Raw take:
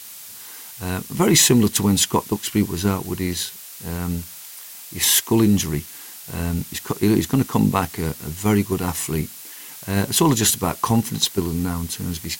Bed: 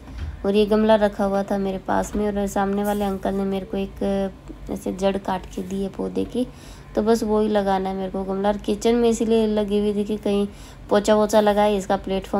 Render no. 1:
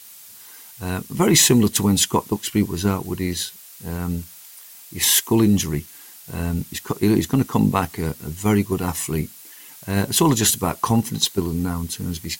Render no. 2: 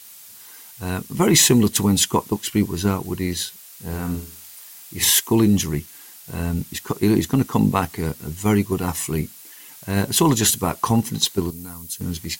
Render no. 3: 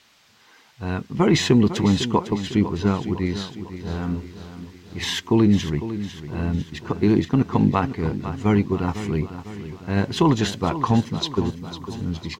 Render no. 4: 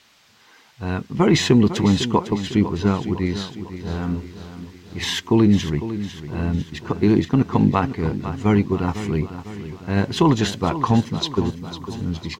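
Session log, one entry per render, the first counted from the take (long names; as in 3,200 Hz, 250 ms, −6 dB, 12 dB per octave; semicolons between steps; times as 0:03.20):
broadband denoise 6 dB, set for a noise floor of −39 dBFS
0:03.85–0:05.11: flutter between parallel walls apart 8.5 metres, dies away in 0.45 s; 0:11.50–0:12.01: first-order pre-emphasis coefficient 0.8
high-frequency loss of the air 200 metres; repeating echo 502 ms, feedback 51%, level −12 dB
level +1.5 dB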